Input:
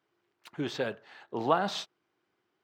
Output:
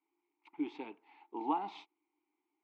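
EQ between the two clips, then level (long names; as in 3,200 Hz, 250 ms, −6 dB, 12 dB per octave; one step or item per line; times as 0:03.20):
formant filter u
bass and treble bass −14 dB, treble −5 dB
parametric band 90 Hz −5.5 dB 0.7 octaves
+6.5 dB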